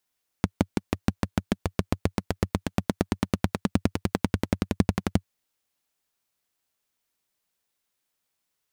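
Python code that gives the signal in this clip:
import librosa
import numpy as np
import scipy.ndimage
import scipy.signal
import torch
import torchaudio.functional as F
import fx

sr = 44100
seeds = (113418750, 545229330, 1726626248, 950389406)

y = fx.engine_single_rev(sr, seeds[0], length_s=4.8, rpm=700, resonances_hz=(95.0, 190.0), end_rpm=1400)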